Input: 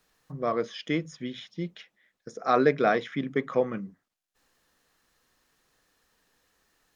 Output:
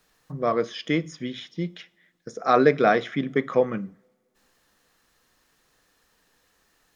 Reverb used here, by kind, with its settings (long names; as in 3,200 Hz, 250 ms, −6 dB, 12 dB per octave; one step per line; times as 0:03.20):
coupled-rooms reverb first 0.46 s, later 2.6 s, from −26 dB, DRR 18.5 dB
level +4 dB